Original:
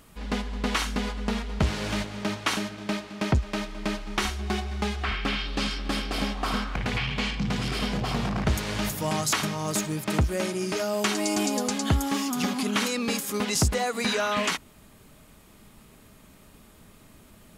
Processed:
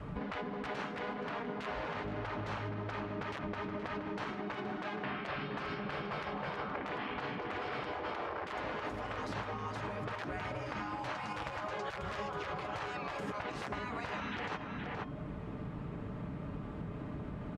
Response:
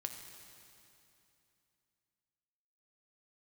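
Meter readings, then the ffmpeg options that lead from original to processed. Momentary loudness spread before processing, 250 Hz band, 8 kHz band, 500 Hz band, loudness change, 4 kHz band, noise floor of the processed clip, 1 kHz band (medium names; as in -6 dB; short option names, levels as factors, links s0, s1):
6 LU, -13.0 dB, -29.5 dB, -8.5 dB, -12.0 dB, -17.5 dB, -43 dBFS, -6.5 dB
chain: -filter_complex "[0:a]adynamicequalizer=threshold=0.00631:dfrequency=280:dqfactor=2.9:tfrequency=280:tqfactor=2.9:attack=5:release=100:ratio=0.375:range=3:mode=boostabove:tftype=bell,bandreject=f=356.1:t=h:w=4,bandreject=f=712.2:t=h:w=4,bandreject=f=1068.3:t=h:w=4,bandreject=f=1424.4:t=h:w=4,bandreject=f=1780.5:t=h:w=4,bandreject=f=2136.6:t=h:w=4,bandreject=f=2492.7:t=h:w=4,bandreject=f=2848.8:t=h:w=4,bandreject=f=3204.9:t=h:w=4,bandreject=f=3561:t=h:w=4,bandreject=f=3917.1:t=h:w=4,bandreject=f=4273.2:t=h:w=4,bandreject=f=4629.3:t=h:w=4,bandreject=f=4985.4:t=h:w=4,bandreject=f=5341.5:t=h:w=4,bandreject=f=5697.6:t=h:w=4,bandreject=f=6053.7:t=h:w=4,bandreject=f=6409.8:t=h:w=4,bandreject=f=6765.9:t=h:w=4,bandreject=f=7122:t=h:w=4,bandreject=f=7478.1:t=h:w=4,bandreject=f=7834.2:t=h:w=4,bandreject=f=8190.3:t=h:w=4,bandreject=f=8546.4:t=h:w=4,bandreject=f=8902.5:t=h:w=4,bandreject=f=9258.6:t=h:w=4,bandreject=f=9614.7:t=h:w=4,bandreject=f=9970.8:t=h:w=4,bandreject=f=10326.9:t=h:w=4,bandreject=f=10683:t=h:w=4,bandreject=f=11039.1:t=h:w=4,bandreject=f=11395.2:t=h:w=4,bandreject=f=11751.3:t=h:w=4,bandreject=f=12107.4:t=h:w=4,bandreject=f=12463.5:t=h:w=4,bandreject=f=12819.6:t=h:w=4,bandreject=f=13175.7:t=h:w=4,asplit=2[s0][s1];[1:a]atrim=start_sample=2205,asetrate=70560,aresample=44100,lowpass=1300[s2];[s1][s2]afir=irnorm=-1:irlink=0,volume=0.251[s3];[s0][s3]amix=inputs=2:normalize=0,aeval=exprs='(mod(5.62*val(0)+1,2)-1)/5.62':c=same,aecho=1:1:6.8:0.38,afftfilt=real='re*lt(hypot(re,im),0.1)':imag='im*lt(hypot(re,im),0.1)':win_size=1024:overlap=0.75,highpass=68,lowshelf=f=130:g=8.5,alimiter=limit=0.126:level=0:latency=1:release=50,lowpass=1500,asplit=2[s4][s5];[s5]adelay=472.3,volume=0.447,highshelf=f=4000:g=-10.6[s6];[s4][s6]amix=inputs=2:normalize=0,acompressor=threshold=0.00398:ratio=5,volume=3.35"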